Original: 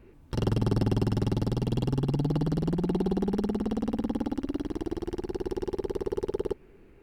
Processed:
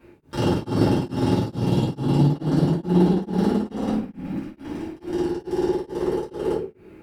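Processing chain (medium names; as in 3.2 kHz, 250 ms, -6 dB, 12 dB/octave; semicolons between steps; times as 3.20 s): Bessel high-pass 160 Hz, order 2; 3.93–5.09 s: compressor with a negative ratio -37 dBFS, ratio -0.5; simulated room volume 63 m³, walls mixed, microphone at 2.4 m; tremolo of two beating tones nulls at 2.3 Hz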